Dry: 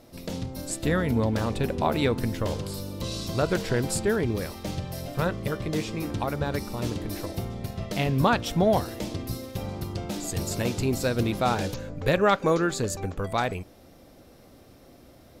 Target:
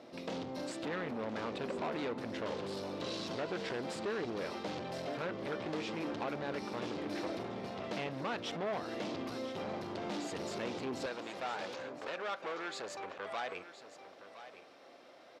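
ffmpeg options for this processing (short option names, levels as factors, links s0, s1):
-af "acompressor=threshold=0.0398:ratio=6,asoftclip=type=hard:threshold=0.02,asetnsamples=n=441:p=0,asendcmd='11.06 highpass f 590',highpass=270,lowpass=3800,aecho=1:1:1016:0.224,volume=1.19"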